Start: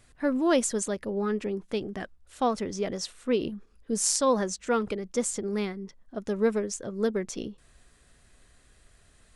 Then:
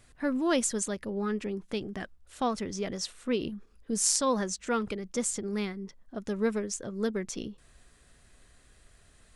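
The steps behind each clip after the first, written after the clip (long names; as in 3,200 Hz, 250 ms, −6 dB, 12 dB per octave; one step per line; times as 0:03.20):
dynamic equaliser 540 Hz, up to −5 dB, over −39 dBFS, Q 0.7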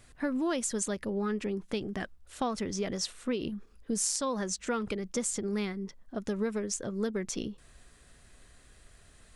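downward compressor 10 to 1, threshold −29 dBFS, peak gain reduction 8.5 dB
level +2 dB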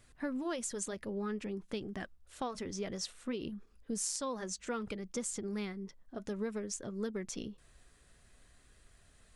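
flanger 0.57 Hz, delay 0.6 ms, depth 1.9 ms, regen −84%
level −1.5 dB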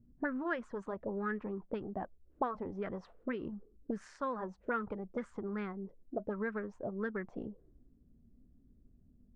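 envelope-controlled low-pass 220–1,700 Hz up, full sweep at −33 dBFS
level −1 dB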